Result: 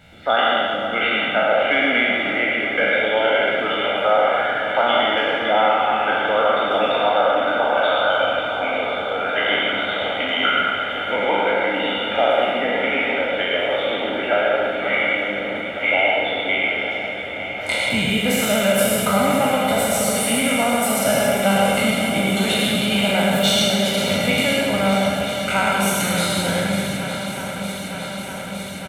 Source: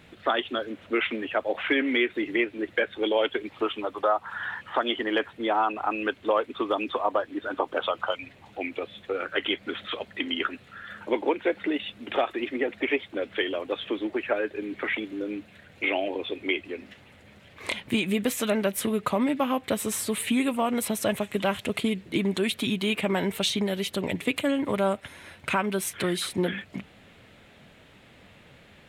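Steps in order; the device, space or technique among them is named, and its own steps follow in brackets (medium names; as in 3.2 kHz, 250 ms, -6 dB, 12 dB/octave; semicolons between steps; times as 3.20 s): spectral sustain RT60 1.80 s; microphone above a desk (comb 1.4 ms, depth 76%; reverberation RT60 0.40 s, pre-delay 101 ms, DRR 2.5 dB); shuffle delay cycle 909 ms, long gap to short 1.5:1, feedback 75%, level -12 dB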